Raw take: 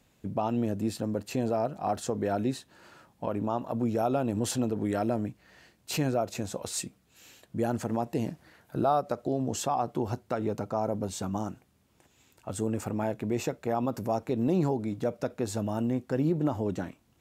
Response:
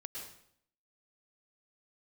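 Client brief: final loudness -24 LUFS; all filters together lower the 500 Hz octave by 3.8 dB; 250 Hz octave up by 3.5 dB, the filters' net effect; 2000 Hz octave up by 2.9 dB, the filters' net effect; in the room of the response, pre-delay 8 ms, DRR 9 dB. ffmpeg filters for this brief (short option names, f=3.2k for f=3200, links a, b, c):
-filter_complex "[0:a]equalizer=f=250:t=o:g=6,equalizer=f=500:t=o:g=-7.5,equalizer=f=2k:t=o:g=4.5,asplit=2[a][b];[1:a]atrim=start_sample=2205,adelay=8[c];[b][c]afir=irnorm=-1:irlink=0,volume=-7dB[d];[a][d]amix=inputs=2:normalize=0,volume=5dB"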